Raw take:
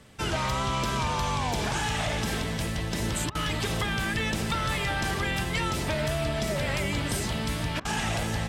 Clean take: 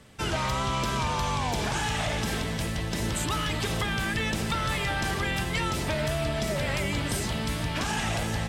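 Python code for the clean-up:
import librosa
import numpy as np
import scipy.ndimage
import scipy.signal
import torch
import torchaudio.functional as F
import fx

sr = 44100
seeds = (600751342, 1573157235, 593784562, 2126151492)

y = fx.fix_interpolate(x, sr, at_s=(3.3, 7.8), length_ms=49.0)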